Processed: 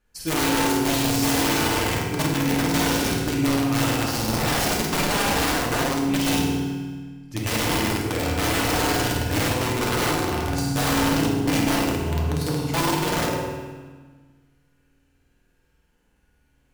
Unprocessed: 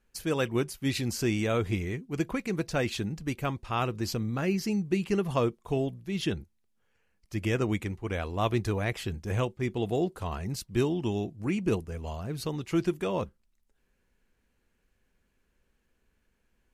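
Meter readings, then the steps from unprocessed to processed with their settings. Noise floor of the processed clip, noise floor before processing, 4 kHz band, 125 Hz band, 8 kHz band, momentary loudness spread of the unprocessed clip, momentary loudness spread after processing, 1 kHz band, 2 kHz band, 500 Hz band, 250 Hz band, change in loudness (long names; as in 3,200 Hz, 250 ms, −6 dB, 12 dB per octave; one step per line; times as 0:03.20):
−65 dBFS, −74 dBFS, +14.0 dB, +5.5 dB, +16.5 dB, 6 LU, 6 LU, +12.0 dB, +12.0 dB, +4.5 dB, +7.5 dB, +8.5 dB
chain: flutter between parallel walls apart 8.7 metres, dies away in 1.4 s
wrap-around overflow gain 21 dB
feedback delay network reverb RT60 1.4 s, low-frequency decay 1.4×, high-frequency decay 0.75×, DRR −1 dB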